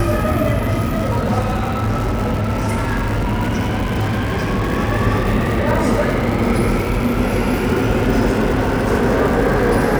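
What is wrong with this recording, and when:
crackle 290/s -23 dBFS
1.39–4.72 clipped -14.5 dBFS

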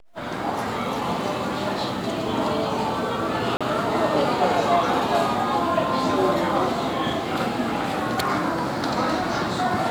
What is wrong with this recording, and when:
3.57–3.61 gap 36 ms

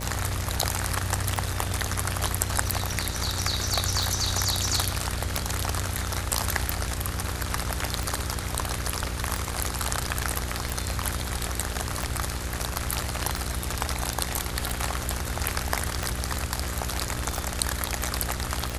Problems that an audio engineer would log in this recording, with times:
buzz 60 Hz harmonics 10 -34 dBFS
tick 45 rpm

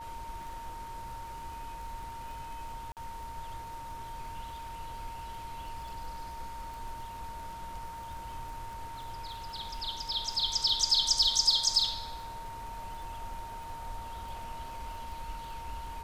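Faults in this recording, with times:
crackle 35/s -43 dBFS
tone 920 Hz -41 dBFS
2.92–2.97 gap 48 ms
6.74 pop

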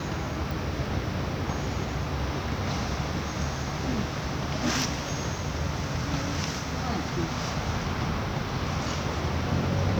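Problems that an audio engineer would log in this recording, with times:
0.51 pop

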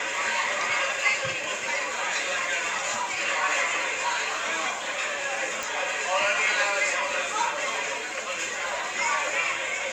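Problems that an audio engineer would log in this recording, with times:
5.63 pop

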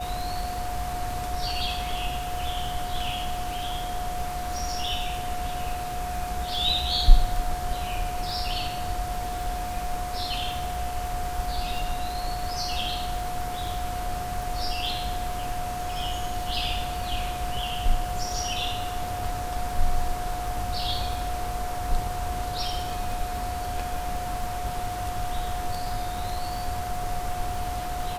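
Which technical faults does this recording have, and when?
crackle 65/s -34 dBFS
tone 720 Hz -31 dBFS

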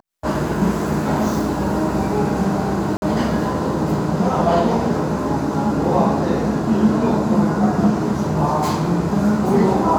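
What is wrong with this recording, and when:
2.97–3.02 gap 51 ms

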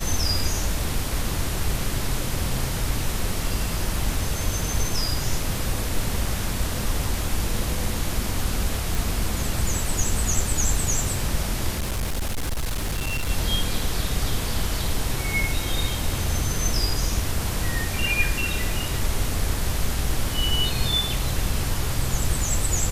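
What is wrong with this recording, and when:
8.95 pop
11.76–13.3 clipped -22 dBFS

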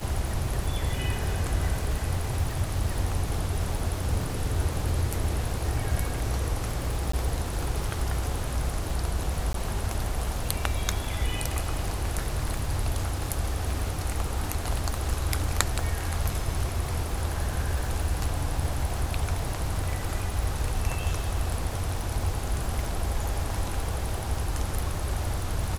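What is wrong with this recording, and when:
crackle 160/s -33 dBFS
7.12–7.13 gap 14 ms
9.53–9.54 gap 13 ms

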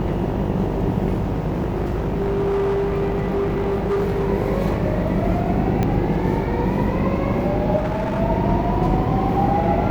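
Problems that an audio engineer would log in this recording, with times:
buzz 50 Hz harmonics 19 -25 dBFS
1.13–4.3 clipped -17.5 dBFS
5.83 pop -9 dBFS
7.77–8.21 clipped -19 dBFS

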